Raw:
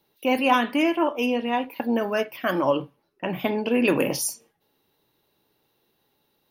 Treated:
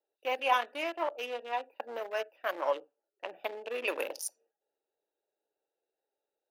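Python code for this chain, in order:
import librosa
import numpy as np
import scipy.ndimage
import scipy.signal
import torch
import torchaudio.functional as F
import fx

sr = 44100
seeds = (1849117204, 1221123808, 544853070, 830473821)

y = fx.wiener(x, sr, points=41)
y = scipy.signal.sosfilt(scipy.signal.butter(4, 510.0, 'highpass', fs=sr, output='sos'), y)
y = y * 10.0 ** (-5.5 / 20.0)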